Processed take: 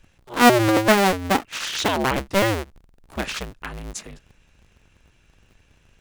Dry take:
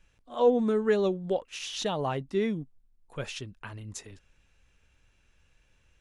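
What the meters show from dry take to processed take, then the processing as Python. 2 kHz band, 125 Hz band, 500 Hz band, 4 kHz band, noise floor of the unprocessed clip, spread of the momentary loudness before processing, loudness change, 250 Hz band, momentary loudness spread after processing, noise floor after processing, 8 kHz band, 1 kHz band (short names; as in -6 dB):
+17.5 dB, +9.5 dB, +4.5 dB, +12.5 dB, -67 dBFS, 18 LU, +9.0 dB, +8.5 dB, 19 LU, -60 dBFS, +13.0 dB, +14.5 dB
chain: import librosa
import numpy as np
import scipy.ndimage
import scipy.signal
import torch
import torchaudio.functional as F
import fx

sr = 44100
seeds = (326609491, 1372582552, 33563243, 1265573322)

y = fx.cycle_switch(x, sr, every=2, mode='inverted')
y = fx.dynamic_eq(y, sr, hz=2000.0, q=1.1, threshold_db=-45.0, ratio=4.0, max_db=4)
y = F.gain(torch.from_numpy(y), 7.5).numpy()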